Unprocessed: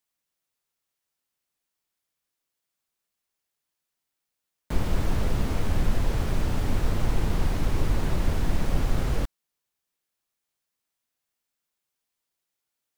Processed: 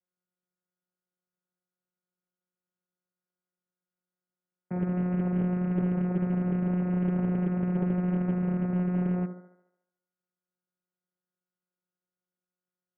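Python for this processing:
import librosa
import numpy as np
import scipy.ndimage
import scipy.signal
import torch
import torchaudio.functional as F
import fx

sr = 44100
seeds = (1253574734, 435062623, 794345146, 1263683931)

y = fx.low_shelf(x, sr, hz=190.0, db=8.5)
y = fx.vocoder(y, sr, bands=4, carrier='saw', carrier_hz=180.0)
y = scipy.signal.sosfilt(scipy.signal.cheby1(6, 9, 2100.0, 'lowpass', fs=sr, output='sos'), y)
y = fx.echo_thinned(y, sr, ms=73, feedback_pct=58, hz=210.0, wet_db=-7.5)
y = fx.doppler_dist(y, sr, depth_ms=0.86)
y = y * librosa.db_to_amplitude(5.5)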